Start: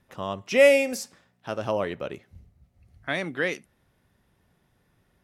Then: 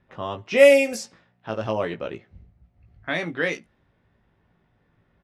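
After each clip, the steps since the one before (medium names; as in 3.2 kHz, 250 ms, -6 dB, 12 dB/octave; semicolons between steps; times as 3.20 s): doubling 18 ms -5.5 dB; level-controlled noise filter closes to 2.7 kHz, open at -17 dBFS; trim +1 dB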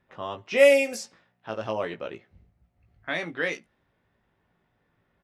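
bass shelf 250 Hz -7 dB; trim -2.5 dB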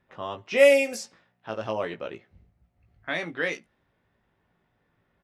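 no audible change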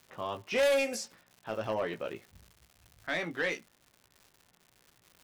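saturation -21.5 dBFS, distortion -6 dB; crackle 230 per s -44 dBFS; trim -1.5 dB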